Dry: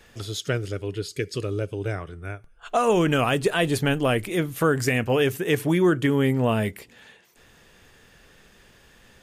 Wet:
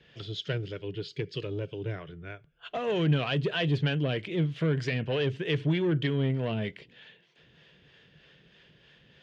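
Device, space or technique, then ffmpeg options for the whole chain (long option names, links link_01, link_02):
guitar amplifier with harmonic tremolo: -filter_complex "[0:a]acrossover=split=450[link_01][link_02];[link_01]aeval=exprs='val(0)*(1-0.5/2+0.5/2*cos(2*PI*3.2*n/s))':channel_layout=same[link_03];[link_02]aeval=exprs='val(0)*(1-0.5/2-0.5/2*cos(2*PI*3.2*n/s))':channel_layout=same[link_04];[link_03][link_04]amix=inputs=2:normalize=0,asoftclip=type=tanh:threshold=-19.5dB,highpass=75,equalizer=frequency=89:width_type=q:width=4:gain=-5,equalizer=frequency=150:width_type=q:width=4:gain=10,equalizer=frequency=240:width_type=q:width=4:gain=-4,equalizer=frequency=810:width_type=q:width=4:gain=-7,equalizer=frequency=1200:width_type=q:width=4:gain=-7,equalizer=frequency=3100:width_type=q:width=4:gain=7,lowpass=frequency=4400:width=0.5412,lowpass=frequency=4400:width=1.3066,volume=-2.5dB"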